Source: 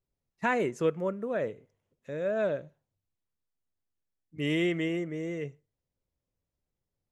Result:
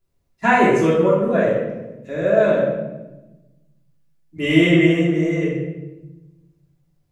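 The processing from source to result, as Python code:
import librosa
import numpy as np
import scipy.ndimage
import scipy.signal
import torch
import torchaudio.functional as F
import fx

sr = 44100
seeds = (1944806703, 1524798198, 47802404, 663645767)

y = fx.room_shoebox(x, sr, seeds[0], volume_m3=510.0, walls='mixed', distance_m=3.1)
y = y * librosa.db_to_amplitude(5.5)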